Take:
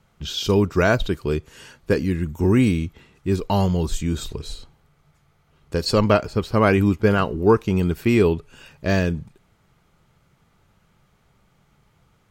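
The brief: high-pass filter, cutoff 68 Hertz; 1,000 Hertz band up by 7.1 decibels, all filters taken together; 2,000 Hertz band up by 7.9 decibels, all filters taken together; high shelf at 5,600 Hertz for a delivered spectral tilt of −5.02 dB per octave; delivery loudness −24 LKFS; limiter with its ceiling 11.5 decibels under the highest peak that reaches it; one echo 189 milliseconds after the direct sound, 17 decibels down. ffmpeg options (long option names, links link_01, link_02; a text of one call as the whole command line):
ffmpeg -i in.wav -af "highpass=68,equalizer=frequency=1000:width_type=o:gain=6.5,equalizer=frequency=2000:width_type=o:gain=9,highshelf=frequency=5600:gain=-6,alimiter=limit=-9dB:level=0:latency=1,aecho=1:1:189:0.141,volume=-1.5dB" out.wav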